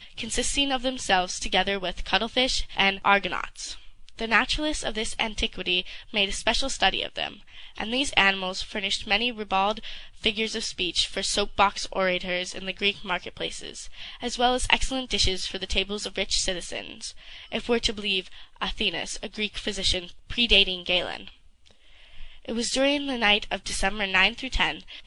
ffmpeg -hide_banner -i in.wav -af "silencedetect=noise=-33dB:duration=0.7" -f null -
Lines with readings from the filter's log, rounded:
silence_start: 21.28
silence_end: 22.18 | silence_duration: 0.91